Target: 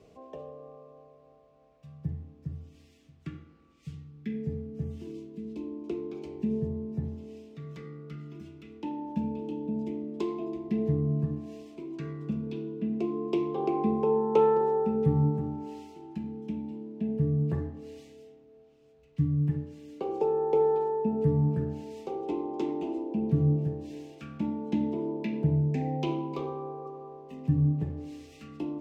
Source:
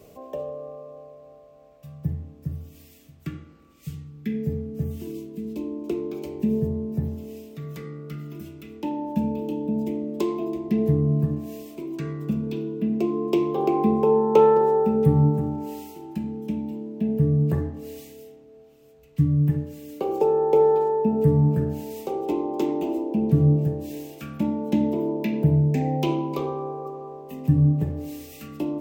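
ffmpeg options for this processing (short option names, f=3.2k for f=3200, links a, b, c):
-af "lowpass=5.5k,bandreject=f=580:w=12,volume=-6.5dB"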